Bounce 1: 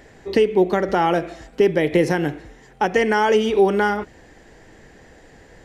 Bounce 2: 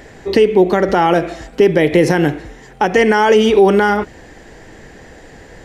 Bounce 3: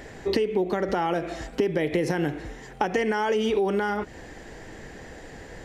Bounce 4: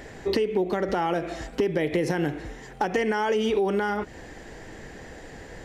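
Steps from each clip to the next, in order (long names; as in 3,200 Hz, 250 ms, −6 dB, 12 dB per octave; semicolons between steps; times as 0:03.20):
brickwall limiter −10.5 dBFS, peak gain reduction 4 dB; level +8.5 dB
downward compressor, threshold −18 dBFS, peak gain reduction 12 dB; level −3.5 dB
hard clipping −15 dBFS, distortion −25 dB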